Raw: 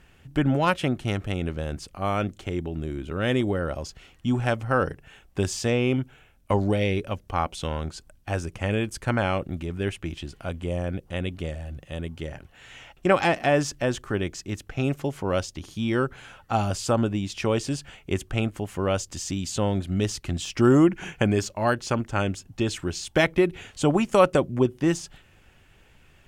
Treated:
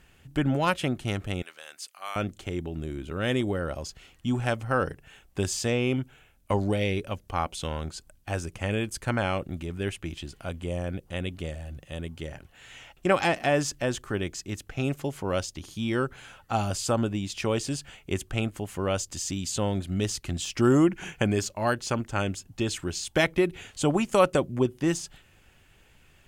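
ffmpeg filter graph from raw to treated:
ffmpeg -i in.wav -filter_complex "[0:a]asettb=1/sr,asplit=3[link_01][link_02][link_03];[link_01]atrim=end=1.424[link_04];[link_02]atrim=start=1.42:end=2.16,asetpts=PTS-STARTPTS,afade=type=in:duration=0.004:curve=qsin,afade=type=out:start_time=0.736:duration=0.004:curve=qsin,highpass=1300,highshelf=frequency=11000:gain=4.5[link_05];[link_03]atrim=start=2.156[link_06];[link_04][link_05]acrossfade=duration=0.004:curve1=hsin:curve2=qsin[link_07];[link_07][link_06]acrossfade=duration=0.004:curve1=qsin:curve2=hsin,highshelf=frequency=4100:gain=6,bandreject=frequency=5600:width=28,volume=-3dB" out.wav

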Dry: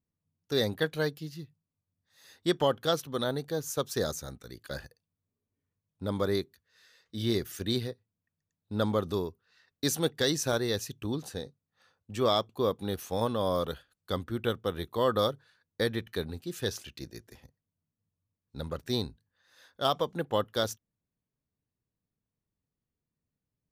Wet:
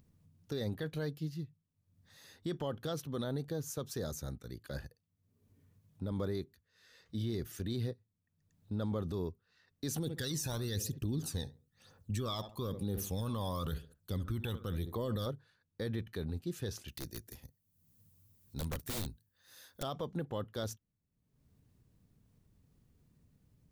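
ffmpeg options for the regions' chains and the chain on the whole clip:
ffmpeg -i in.wav -filter_complex "[0:a]asettb=1/sr,asplit=3[link_01][link_02][link_03];[link_01]atrim=end=3.954[link_04];[link_02]atrim=start=3.95:end=6.12,asetpts=PTS-STARTPTS,afade=type=in:duration=0.004:curve=qsin,afade=type=out:start_time=2.166:duration=0.004:curve=qsin,highpass=49,equalizer=frequency=12000:width=6:gain=6[link_05];[link_03]atrim=start=6.116[link_06];[link_04][link_05]acrossfade=duration=0.004:curve1=hsin:curve2=qsin[link_07];[link_07][link_06]acrossfade=duration=0.004:curve1=qsin:curve2=hsin,asettb=1/sr,asplit=3[link_08][link_09][link_10];[link_08]atrim=end=9.964[link_11];[link_09]atrim=start=9.96:end=15.26,asetpts=PTS-STARTPTS,afade=type=in:duration=0.004:curve=qsin,afade=type=out:start_time=5.296:duration=0.004:curve=qsin,highshelf=frequency=4200:gain=10.5,asplit=2[link_12][link_13];[link_13]adelay=69,lowpass=frequency=1800:poles=1,volume=-17.5dB,asplit=2[link_14][link_15];[link_15]adelay=69,lowpass=frequency=1800:poles=1,volume=0.34,asplit=2[link_16][link_17];[link_17]adelay=69,lowpass=frequency=1800:poles=1,volume=0.34[link_18];[link_12][link_14][link_16][link_18]amix=inputs=4:normalize=0,atrim=end_sample=233730,aphaser=in_gain=1:out_gain=1:delay=1.2:decay=0.59:speed=1:type=triangular[link_19];[link_10]atrim=start=15.256[link_20];[link_11][link_19]acrossfade=duration=0.004:curve1=hsin:curve2=qsin[link_21];[link_21][link_20]acrossfade=duration=0.004:curve1=qsin:curve2=hsin,asettb=1/sr,asplit=3[link_22][link_23][link_24];[link_22]atrim=end=16.884[link_25];[link_23]atrim=start=16.88:end=19.83,asetpts=PTS-STARTPTS,afade=type=in:duration=0.004:curve=qsin,afade=type=out:start_time=2.946:duration=0.004:curve=qsin,aemphasis=mode=production:type=75fm,aeval=exprs='(mod(25.1*val(0)+1,2)-1)/25.1':channel_layout=same[link_26];[link_24]atrim=start=19.826[link_27];[link_25][link_26]acrossfade=duration=0.004:curve1=hsin:curve2=qsin[link_28];[link_28][link_27]acrossfade=duration=0.004:curve1=qsin:curve2=hsin,lowshelf=frequency=320:gain=11,acompressor=mode=upward:threshold=-45dB:ratio=2.5,alimiter=limit=-22dB:level=0:latency=1:release=28,volume=-6.5dB" out.wav

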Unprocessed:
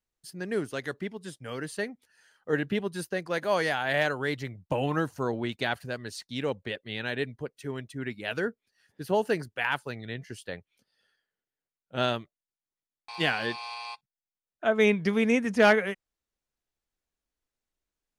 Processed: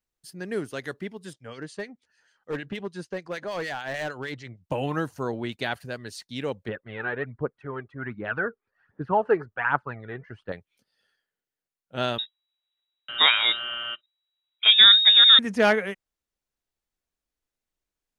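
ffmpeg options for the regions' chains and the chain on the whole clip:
ffmpeg -i in.wav -filter_complex "[0:a]asettb=1/sr,asplit=3[link_01][link_02][link_03];[link_01]atrim=end=1.334[link_04];[link_02]atrim=start=1.33:end=4.64,asetpts=PTS-STARTPTS,afade=type=in:duration=0.004:curve=qsin,afade=type=out:start_time=3.306:duration=0.004:curve=qsin,lowpass=frequency=7600:width=0.5412,lowpass=frequency=7600:width=1.3066,acrossover=split=1700[link_05][link_06];[link_05]aeval=exprs='val(0)*(1-0.7/2+0.7/2*cos(2*PI*6.6*n/s))':channel_layout=same[link_07];[link_06]aeval=exprs='val(0)*(1-0.7/2-0.7/2*cos(2*PI*6.6*n/s))':channel_layout=same[link_08];[link_07][link_08]amix=inputs=2:normalize=0,asoftclip=type=hard:threshold=-25.5dB[link_09];[link_03]atrim=start=4.636[link_10];[link_04][link_09]acrossfade=duration=0.004:curve1=hsin:curve2=qsin[link_11];[link_11][link_10]acrossfade=duration=0.004:curve1=qsin:curve2=hsin,asettb=1/sr,asplit=3[link_12][link_13][link_14];[link_12]atrim=end=6.684[link_15];[link_13]atrim=start=6.68:end=10.52,asetpts=PTS-STARTPTS,afade=type=in:duration=0.004:curve=qsin,afade=type=out:start_time=3.836:duration=0.004:curve=qsin,aphaser=in_gain=1:out_gain=1:delay=2.7:decay=0.54:speed=1.3:type=triangular,lowpass=frequency=1300:width_type=q:width=2.7[link_16];[link_14]atrim=start=10.516[link_17];[link_15][link_16]acrossfade=duration=0.004:curve1=hsin:curve2=qsin[link_18];[link_18][link_17]acrossfade=duration=0.004:curve1=qsin:curve2=hsin,asettb=1/sr,asplit=3[link_19][link_20][link_21];[link_19]atrim=end=12.184[link_22];[link_20]atrim=start=12.18:end=15.39,asetpts=PTS-STARTPTS,afade=type=in:duration=0.004:curve=qsin,afade=type=out:start_time=3.206:duration=0.004:curve=qsin,lowshelf=frequency=180:gain=11.5,acontrast=79,lowpass=frequency=3300:width_type=q:width=0.5098,lowpass=frequency=3300:width_type=q:width=0.6013,lowpass=frequency=3300:width_type=q:width=0.9,lowpass=frequency=3300:width_type=q:width=2.563,afreqshift=-3900[link_23];[link_21]atrim=start=15.386[link_24];[link_22][link_23]acrossfade=duration=0.004:curve1=hsin:curve2=qsin[link_25];[link_25][link_24]acrossfade=duration=0.004:curve1=qsin:curve2=hsin" out.wav

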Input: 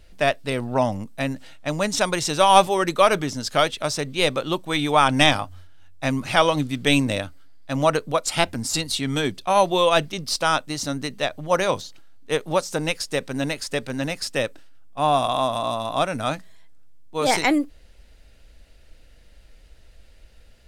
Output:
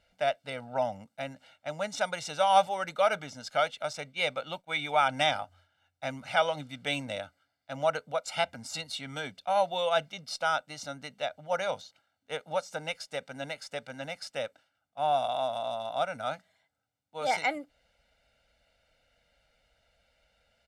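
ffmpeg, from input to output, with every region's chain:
ffmpeg -i in.wav -filter_complex "[0:a]asettb=1/sr,asplit=3[link_01][link_02][link_03];[link_01]atrim=end=3.934[link_04];[link_02]atrim=start=3.93:end=5.09,asetpts=PTS-STARTPTS,afade=type=in:duration=0.004:curve=qsin,afade=type=out:start_time=1.156:duration=0.004:curve=qsin,agate=range=-33dB:threshold=-31dB:ratio=3:release=100:detection=peak,equalizer=frequency=2300:width=7.7:gain=6.5[link_05];[link_03]atrim=start=5.086[link_06];[link_04][link_05]acrossfade=duration=0.004:curve1=hsin:curve2=qsin[link_07];[link_07][link_06]acrossfade=duration=0.004:curve1=qsin:curve2=hsin,highpass=frequency=480:poles=1,aemphasis=mode=reproduction:type=50kf,aecho=1:1:1.4:0.79,volume=-9dB" out.wav

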